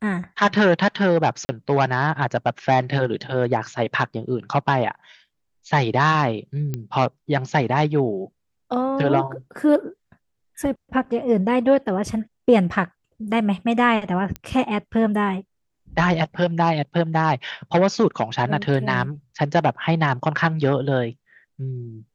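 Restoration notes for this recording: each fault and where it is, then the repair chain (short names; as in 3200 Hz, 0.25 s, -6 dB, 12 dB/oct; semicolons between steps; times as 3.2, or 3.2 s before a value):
1.45–1.49 gap 40 ms
6.74 pop -14 dBFS
14.36 pop -15 dBFS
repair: de-click; interpolate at 1.45, 40 ms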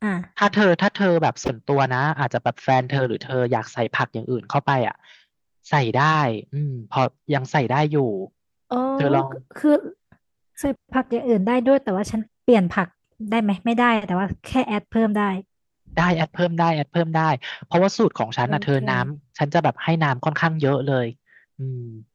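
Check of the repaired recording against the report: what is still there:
none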